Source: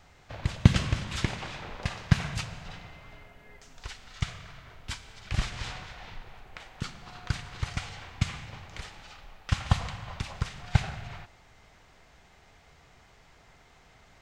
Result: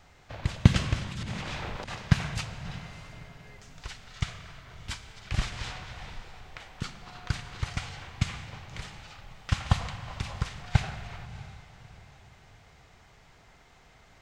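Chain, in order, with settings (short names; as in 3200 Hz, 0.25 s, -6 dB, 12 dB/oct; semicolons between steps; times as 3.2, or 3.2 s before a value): 1.11–1.95 negative-ratio compressor -40 dBFS, ratio -1; diffused feedback echo 0.63 s, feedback 40%, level -15.5 dB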